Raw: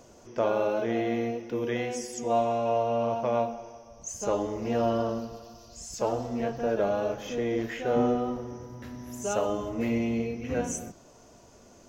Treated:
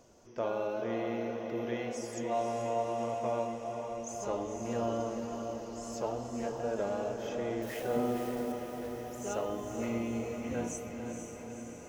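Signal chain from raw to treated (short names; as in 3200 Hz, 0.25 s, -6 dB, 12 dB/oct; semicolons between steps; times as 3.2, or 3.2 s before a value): 7.62–8.52 switching spikes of -31.5 dBFS; diffused feedback echo 0.49 s, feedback 68%, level -6 dB; gain -7.5 dB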